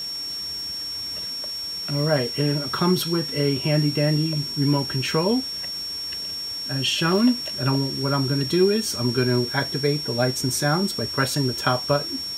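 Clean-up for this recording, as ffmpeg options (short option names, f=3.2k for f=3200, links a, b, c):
-af "adeclick=t=4,bandreject=f=5.5k:w=30,afwtdn=0.0079"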